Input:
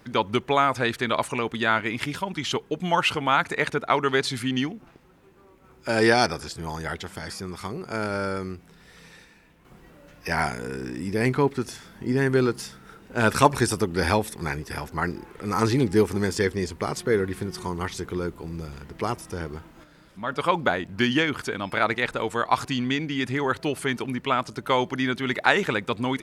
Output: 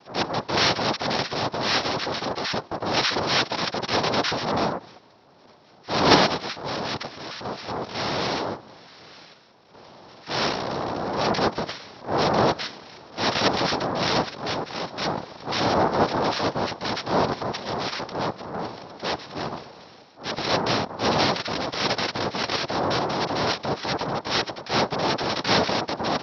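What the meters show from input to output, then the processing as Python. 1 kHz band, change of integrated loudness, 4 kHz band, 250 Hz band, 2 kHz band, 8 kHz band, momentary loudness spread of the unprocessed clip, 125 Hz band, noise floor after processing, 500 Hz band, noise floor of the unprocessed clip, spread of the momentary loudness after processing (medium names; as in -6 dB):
+1.5 dB, +0.5 dB, +6.5 dB, -2.0 dB, -2.0 dB, -1.0 dB, 13 LU, -2.5 dB, -53 dBFS, 0.0 dB, -54 dBFS, 11 LU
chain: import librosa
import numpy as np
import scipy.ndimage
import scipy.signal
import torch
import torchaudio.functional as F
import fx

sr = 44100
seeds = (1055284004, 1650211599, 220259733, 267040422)

p1 = fx.noise_vocoder(x, sr, seeds[0], bands=2)
p2 = fx.transient(p1, sr, attack_db=-11, sustain_db=3)
p3 = fx.level_steps(p2, sr, step_db=18)
p4 = p2 + F.gain(torch.from_numpy(p3), -2.0).numpy()
p5 = scipy.signal.sosfilt(scipy.signal.cheby1(6, 3, 5600.0, 'lowpass', fs=sr, output='sos'), p4)
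y = F.gain(torch.from_numpy(p5), 3.0).numpy()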